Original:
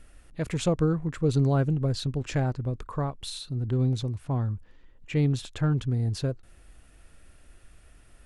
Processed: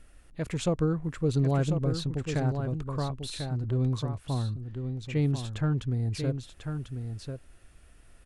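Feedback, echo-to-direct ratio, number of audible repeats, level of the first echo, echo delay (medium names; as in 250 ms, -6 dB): no regular repeats, -7.0 dB, 1, -7.0 dB, 1044 ms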